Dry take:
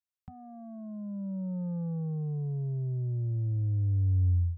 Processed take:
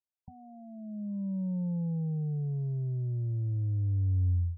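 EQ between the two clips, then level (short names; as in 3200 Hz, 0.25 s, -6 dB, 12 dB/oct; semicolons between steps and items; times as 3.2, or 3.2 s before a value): dynamic EQ 190 Hz, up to +5 dB, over -43 dBFS, Q 1.2; brick-wall FIR low-pass 1000 Hz; -3.0 dB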